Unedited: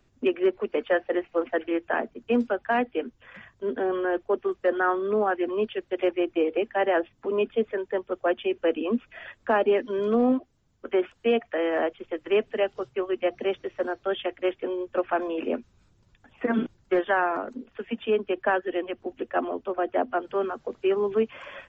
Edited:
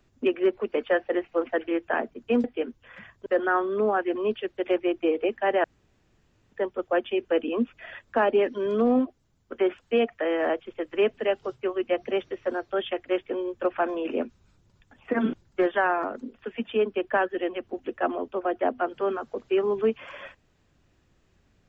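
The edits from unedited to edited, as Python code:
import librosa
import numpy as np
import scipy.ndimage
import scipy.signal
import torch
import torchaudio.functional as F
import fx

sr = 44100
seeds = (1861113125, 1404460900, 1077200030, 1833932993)

y = fx.edit(x, sr, fx.cut(start_s=2.44, length_s=0.38),
    fx.cut(start_s=3.64, length_s=0.95),
    fx.room_tone_fill(start_s=6.97, length_s=0.88), tone=tone)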